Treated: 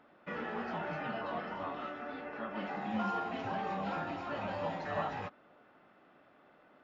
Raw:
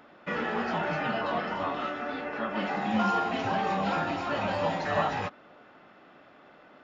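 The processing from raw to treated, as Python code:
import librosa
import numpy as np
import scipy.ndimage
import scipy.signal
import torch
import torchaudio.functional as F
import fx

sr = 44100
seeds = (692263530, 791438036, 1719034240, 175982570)

y = fx.high_shelf(x, sr, hz=4300.0, db=-9.0)
y = y * 10.0 ** (-8.0 / 20.0)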